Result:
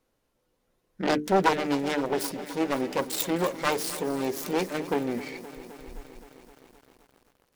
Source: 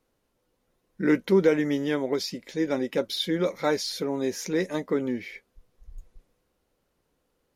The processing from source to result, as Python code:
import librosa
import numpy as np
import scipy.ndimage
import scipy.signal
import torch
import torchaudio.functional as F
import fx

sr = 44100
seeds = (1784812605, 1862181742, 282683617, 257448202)

y = fx.self_delay(x, sr, depth_ms=0.78)
y = fx.hum_notches(y, sr, base_hz=50, count=9)
y = fx.echo_crushed(y, sr, ms=260, feedback_pct=80, bits=8, wet_db=-15)